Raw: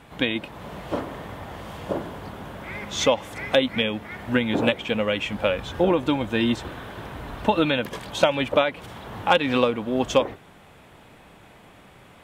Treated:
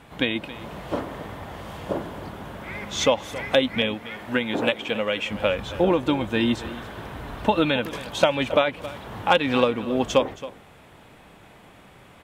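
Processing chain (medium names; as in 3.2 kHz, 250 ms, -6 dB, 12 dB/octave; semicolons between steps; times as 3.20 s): 3.94–5.31 s: bass shelf 180 Hz -11 dB; on a send: delay 272 ms -16 dB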